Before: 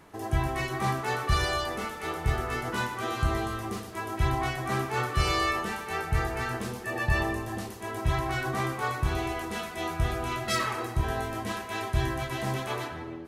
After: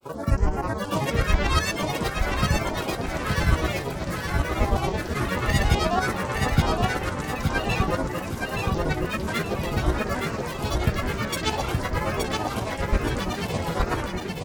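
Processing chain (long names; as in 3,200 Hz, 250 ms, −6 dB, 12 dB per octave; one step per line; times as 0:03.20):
granular cloud, pitch spread up and down by 12 semitones
auto-filter notch sine 0.56 Hz 780–4,100 Hz
shaped tremolo saw up 8.9 Hz, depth 60%
wrong playback speed 48 kHz file played as 44.1 kHz
on a send: repeating echo 872 ms, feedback 37%, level −3.5 dB
on the sum: level +8 dB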